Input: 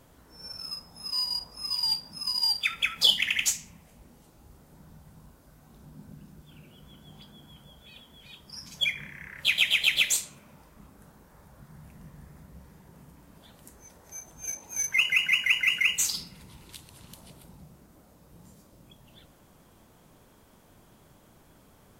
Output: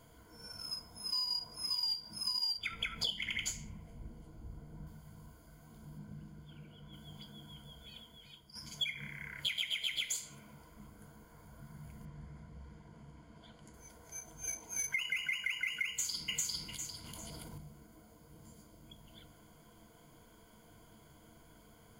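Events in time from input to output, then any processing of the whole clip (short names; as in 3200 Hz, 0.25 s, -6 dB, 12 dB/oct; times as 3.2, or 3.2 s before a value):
2.58–4.87 tilt -2.5 dB/oct
5.97–6.92 LPF 4900 Hz -> 2700 Hz 6 dB/oct
7.92–8.55 fade out, to -10.5 dB
12.05–13.74 air absorption 79 m
15.88–16.35 echo throw 0.4 s, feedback 20%, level -0.5 dB
17.04–17.58 fast leveller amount 100%
whole clip: ripple EQ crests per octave 1.8, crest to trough 12 dB; compressor 10:1, threshold -28 dBFS; gain -4.5 dB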